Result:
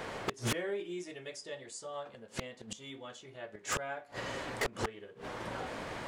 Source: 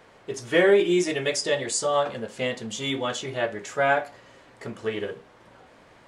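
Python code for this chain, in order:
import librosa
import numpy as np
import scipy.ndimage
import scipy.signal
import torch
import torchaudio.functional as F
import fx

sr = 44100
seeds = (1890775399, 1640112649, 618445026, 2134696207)

y = fx.gate_flip(x, sr, shuts_db=-25.0, range_db=-31)
y = 10.0 ** (-37.0 / 20.0) * (np.abs((y / 10.0 ** (-37.0 / 20.0) + 3.0) % 4.0 - 2.0) - 1.0)
y = F.gain(torch.from_numpy(y), 12.0).numpy()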